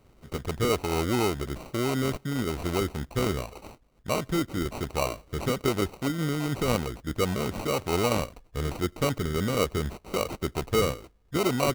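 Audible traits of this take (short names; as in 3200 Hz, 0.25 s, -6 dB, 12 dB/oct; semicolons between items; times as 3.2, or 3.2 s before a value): aliases and images of a low sample rate 1700 Hz, jitter 0%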